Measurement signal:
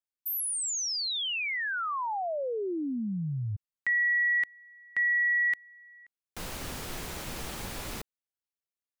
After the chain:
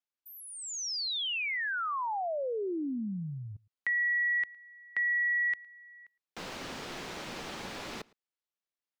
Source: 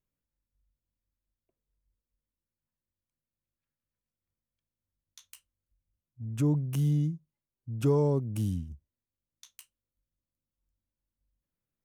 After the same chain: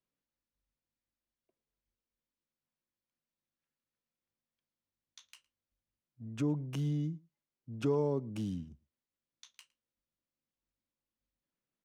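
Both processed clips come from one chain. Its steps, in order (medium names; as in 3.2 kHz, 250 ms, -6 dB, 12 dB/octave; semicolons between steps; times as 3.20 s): three-band isolator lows -15 dB, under 160 Hz, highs -18 dB, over 6.3 kHz; compression 1.5:1, threshold -33 dBFS; echo from a far wall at 19 m, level -25 dB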